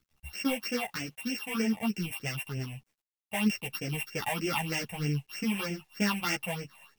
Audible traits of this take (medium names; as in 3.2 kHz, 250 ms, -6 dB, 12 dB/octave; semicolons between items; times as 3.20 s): a buzz of ramps at a fixed pitch in blocks of 16 samples; phasing stages 6, 3.2 Hz, lowest notch 330–1100 Hz; a quantiser's noise floor 12-bit, dither none; a shimmering, thickened sound